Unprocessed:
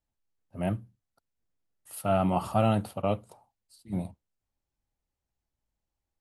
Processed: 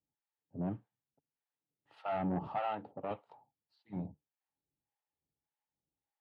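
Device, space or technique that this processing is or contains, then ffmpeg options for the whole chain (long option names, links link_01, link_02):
guitar amplifier with harmonic tremolo: -filter_complex "[0:a]acrossover=split=620[link_01][link_02];[link_01]aeval=exprs='val(0)*(1-1/2+1/2*cos(2*PI*1.7*n/s))':channel_layout=same[link_03];[link_02]aeval=exprs='val(0)*(1-1/2-1/2*cos(2*PI*1.7*n/s))':channel_layout=same[link_04];[link_03][link_04]amix=inputs=2:normalize=0,asoftclip=type=tanh:threshold=-28dB,highpass=89,equalizer=frequency=150:width_type=q:width=4:gain=9,equalizer=frequency=290:width_type=q:width=4:gain=8,equalizer=frequency=440:width_type=q:width=4:gain=6,equalizer=frequency=850:width_type=q:width=4:gain=10,equalizer=frequency=1800:width_type=q:width=4:gain=5,lowpass=frequency=3600:width=0.5412,lowpass=frequency=3600:width=1.3066,asettb=1/sr,asplit=3[link_05][link_06][link_07];[link_05]atrim=end=2.594[link_08];[link_06]atrim=start=2.59:end=3.11,asetpts=PTS-STARTPTS,afade=type=in:duration=0.004:curve=qsin,afade=type=out:start_time=0.516:duration=0.004:curve=qsin,bass=frequency=250:gain=-12,treble=frequency=4000:gain=-8[link_09];[link_07]atrim=start=3.106[link_10];[link_08][link_09]acrossfade=duration=0.004:curve1=hsin:curve2=qsin[link_11];[link_11][link_10]acrossfade=duration=0.004:curve1=qsin:curve2=hsin,volume=-5dB"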